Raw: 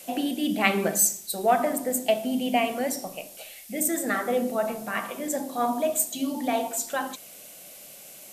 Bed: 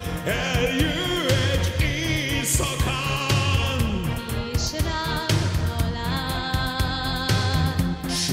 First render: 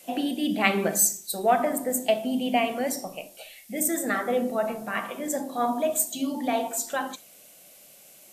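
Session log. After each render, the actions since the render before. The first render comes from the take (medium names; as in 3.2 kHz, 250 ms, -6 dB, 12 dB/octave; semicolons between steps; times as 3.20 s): noise print and reduce 6 dB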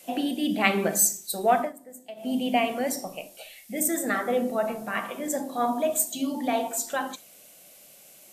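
1.58–2.31 s: dip -18.5 dB, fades 0.15 s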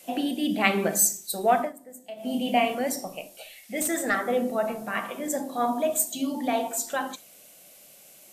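2.01–2.75 s: doubling 29 ms -7 dB; 3.63–4.15 s: overdrive pedal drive 10 dB, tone 4.4 kHz, clips at -12.5 dBFS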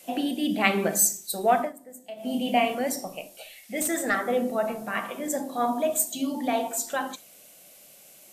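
no audible change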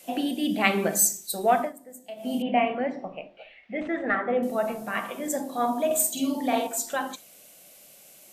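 2.42–4.43 s: low-pass 2.6 kHz 24 dB/octave; 5.86–6.67 s: doubling 48 ms -3 dB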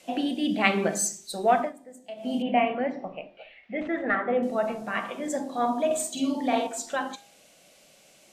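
low-pass 6.3 kHz 12 dB/octave; de-hum 403.9 Hz, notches 22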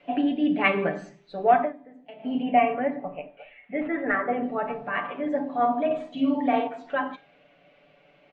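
low-pass 2.6 kHz 24 dB/octave; comb 6.9 ms, depth 71%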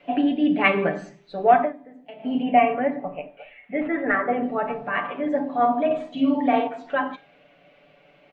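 trim +3 dB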